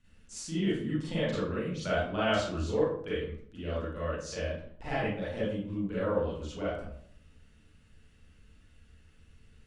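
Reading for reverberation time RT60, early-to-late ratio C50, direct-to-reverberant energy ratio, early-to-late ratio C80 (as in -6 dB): 0.60 s, -1.5 dB, -10.0 dB, 4.5 dB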